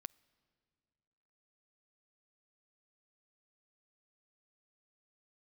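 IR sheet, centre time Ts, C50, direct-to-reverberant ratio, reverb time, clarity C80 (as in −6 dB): 2 ms, 25.0 dB, 16.0 dB, non-exponential decay, 26.0 dB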